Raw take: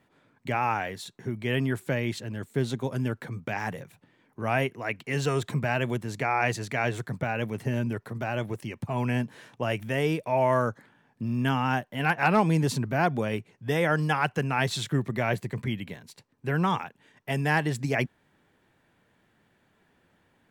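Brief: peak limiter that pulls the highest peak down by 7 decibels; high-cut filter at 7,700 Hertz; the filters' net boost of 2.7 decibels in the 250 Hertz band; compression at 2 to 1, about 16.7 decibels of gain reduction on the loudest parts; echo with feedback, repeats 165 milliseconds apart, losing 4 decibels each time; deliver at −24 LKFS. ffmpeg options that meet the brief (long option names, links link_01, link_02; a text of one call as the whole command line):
ffmpeg -i in.wav -af "lowpass=7700,equalizer=frequency=250:width_type=o:gain=3.5,acompressor=threshold=-47dB:ratio=2,alimiter=level_in=6dB:limit=-24dB:level=0:latency=1,volume=-6dB,aecho=1:1:165|330|495|660|825|990|1155|1320|1485:0.631|0.398|0.25|0.158|0.0994|0.0626|0.0394|0.0249|0.0157,volume=16dB" out.wav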